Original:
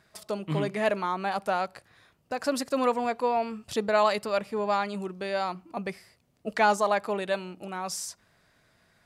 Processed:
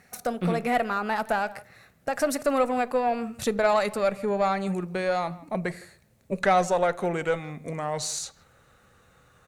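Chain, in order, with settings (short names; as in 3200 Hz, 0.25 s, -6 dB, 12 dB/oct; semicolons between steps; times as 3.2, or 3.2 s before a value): speed glide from 116% -> 75%; thirty-one-band EQ 315 Hz -7 dB, 1000 Hz -7 dB, 3150 Hz -10 dB, 5000 Hz -9 dB; in parallel at +2.5 dB: compressor, threshold -34 dBFS, peak gain reduction 14.5 dB; on the sum: requantised 12-bit, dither none; added harmonics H 4 -23 dB, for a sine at -10 dBFS; speakerphone echo 0.16 s, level -20 dB; on a send at -18 dB: reverb RT60 0.40 s, pre-delay 4 ms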